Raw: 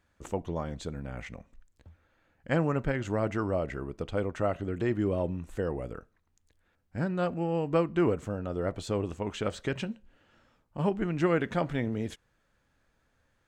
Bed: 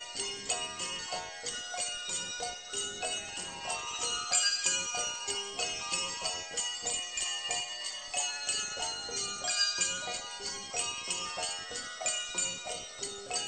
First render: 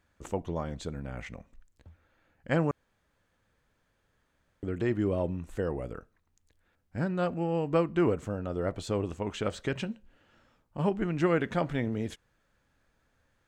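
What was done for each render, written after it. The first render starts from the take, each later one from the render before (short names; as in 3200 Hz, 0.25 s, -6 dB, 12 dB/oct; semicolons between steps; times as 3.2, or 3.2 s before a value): 2.71–4.63 room tone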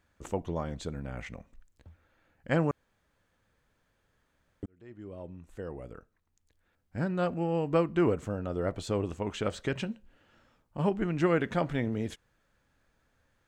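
4.66–7.19 fade in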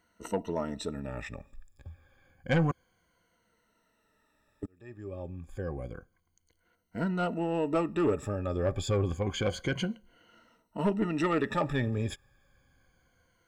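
moving spectral ripple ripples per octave 1.9, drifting -0.29 Hz, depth 18 dB; soft clip -19 dBFS, distortion -13 dB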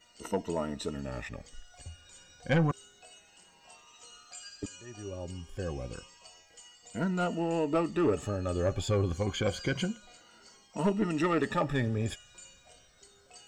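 add bed -19 dB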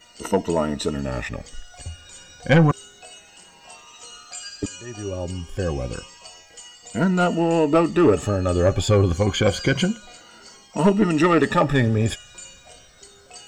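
gain +11 dB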